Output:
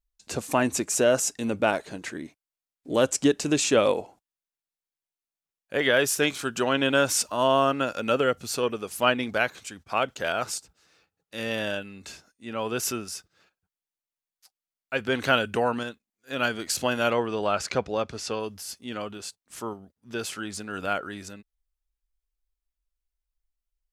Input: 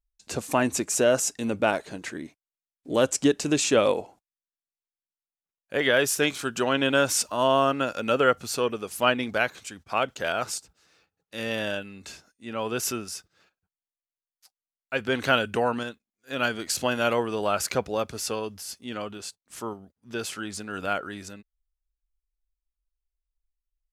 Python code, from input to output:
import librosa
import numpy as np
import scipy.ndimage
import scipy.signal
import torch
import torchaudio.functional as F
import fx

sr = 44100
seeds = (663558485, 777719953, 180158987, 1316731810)

y = fx.dynamic_eq(x, sr, hz=1100.0, q=0.88, threshold_db=-33.0, ratio=4.0, max_db=-7, at=(8.17, 8.63))
y = fx.lowpass(y, sr, hz=6000.0, slope=12, at=(17.1, 18.4))